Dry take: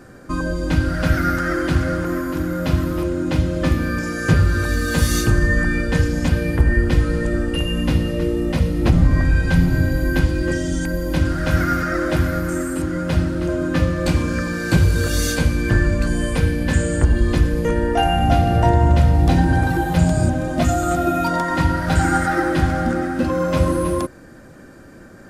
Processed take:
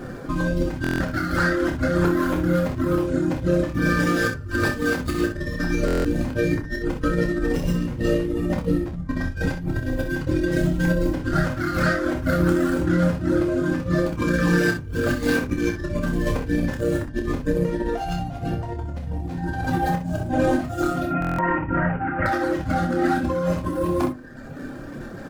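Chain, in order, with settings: median filter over 15 samples; reverb removal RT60 1 s; 21.07–22.26 elliptic low-pass 2600 Hz, stop band 40 dB; negative-ratio compressor -28 dBFS, ratio -1; flange 0.28 Hz, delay 5.4 ms, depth 6.6 ms, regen -53%; early reflections 28 ms -6.5 dB, 63 ms -8.5 dB; reverb RT60 0.45 s, pre-delay 4 ms, DRR 14.5 dB; stuck buffer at 0.82/5.86/21.2, samples 1024, times 7; gain +6.5 dB

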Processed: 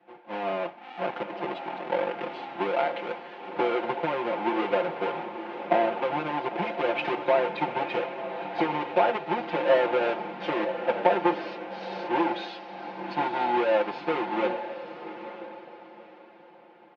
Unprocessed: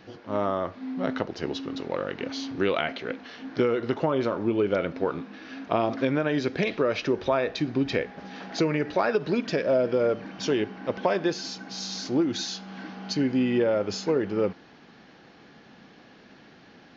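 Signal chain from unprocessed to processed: half-waves squared off; compressor 4:1, threshold -25 dBFS, peak gain reduction 9 dB; speaker cabinet 400–2600 Hz, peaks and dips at 420 Hz -3 dB, 840 Hz +9 dB, 1200 Hz -6 dB, 1800 Hz -5 dB; comb 5.7 ms, depth 98%; diffused feedback echo 0.945 s, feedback 47%, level -6.5 dB; three-band expander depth 70%

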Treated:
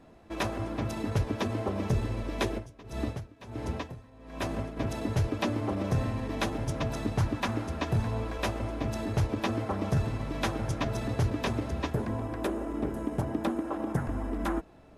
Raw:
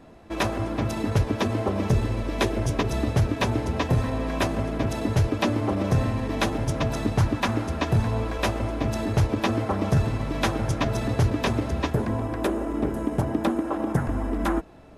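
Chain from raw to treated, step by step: 2.57–4.76 dB-linear tremolo 2 Hz -> 0.94 Hz, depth 22 dB; gain -6 dB

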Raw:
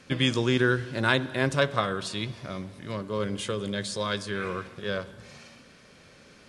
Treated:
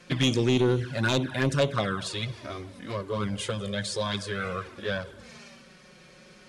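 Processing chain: envelope flanger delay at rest 6 ms, full sweep at -20 dBFS; sine folder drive 6 dB, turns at -10 dBFS; gain -6 dB

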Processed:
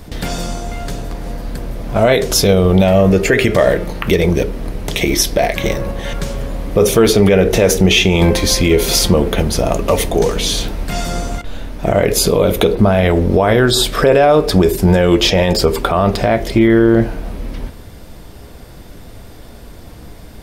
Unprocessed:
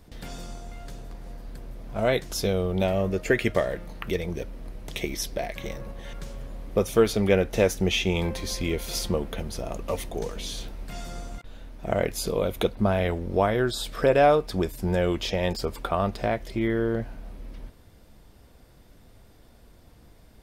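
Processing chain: on a send at -15.5 dB: bell 390 Hz +12.5 dB 0.71 oct + reverb RT60 0.40 s, pre-delay 7 ms; on the sum: maximiser +18.5 dB; gain -1 dB

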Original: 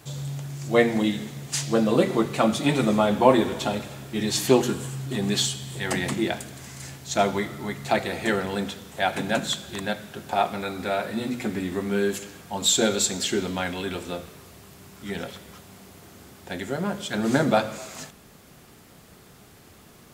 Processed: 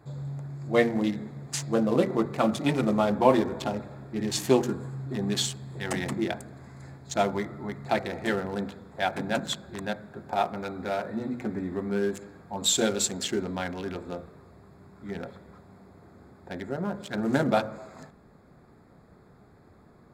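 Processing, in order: Wiener smoothing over 15 samples; gain -3 dB

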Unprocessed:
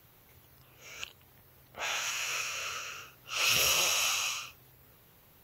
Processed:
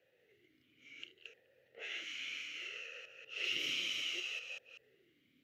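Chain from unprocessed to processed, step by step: reverse delay 0.191 s, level -3 dB; vowel sweep e-i 0.65 Hz; gain +2.5 dB

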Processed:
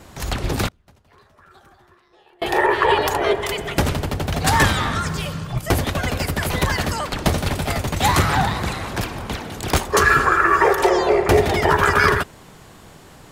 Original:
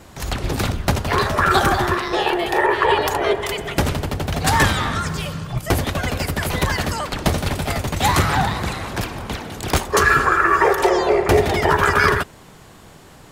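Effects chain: 0.68–2.42 flipped gate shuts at -20 dBFS, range -34 dB

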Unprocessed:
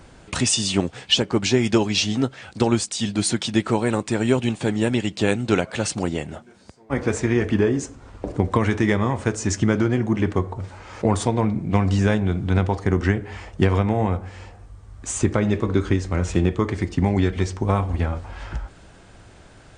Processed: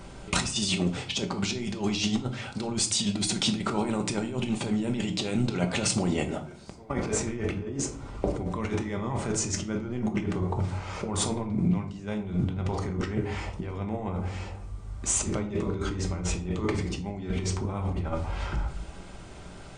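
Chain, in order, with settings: notch 1700 Hz, Q 8; limiter -11 dBFS, peak gain reduction 7 dB; negative-ratio compressor -26 dBFS, ratio -0.5; shoebox room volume 450 m³, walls furnished, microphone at 1.2 m; gain -3 dB

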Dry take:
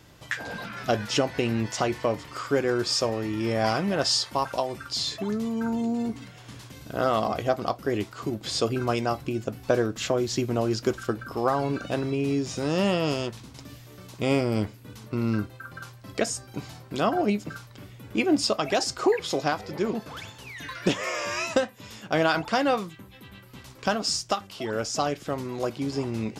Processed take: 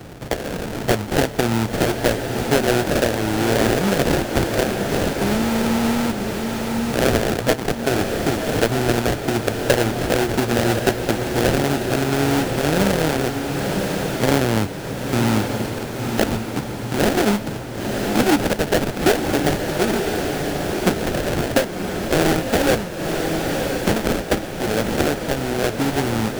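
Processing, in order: sample-rate reducer 1100 Hz, jitter 20%; diffused feedback echo 1.006 s, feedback 47%, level -6.5 dB; three-band squash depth 40%; gain +6 dB

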